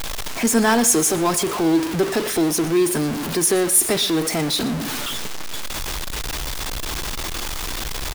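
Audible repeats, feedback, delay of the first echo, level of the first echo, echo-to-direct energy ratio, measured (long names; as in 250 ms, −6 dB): 1, 15%, 120 ms, −18.5 dB, −18.5 dB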